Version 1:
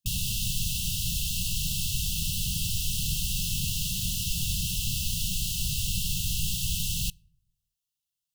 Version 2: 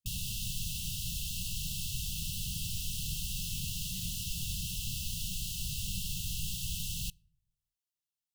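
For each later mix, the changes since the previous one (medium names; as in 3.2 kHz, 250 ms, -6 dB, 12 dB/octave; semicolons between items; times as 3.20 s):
background -7.5 dB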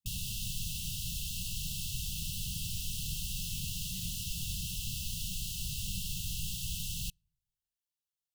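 background: send -10.5 dB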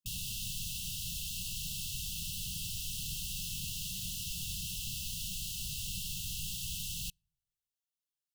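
speech -5.0 dB; master: add bass shelf 240 Hz -5.5 dB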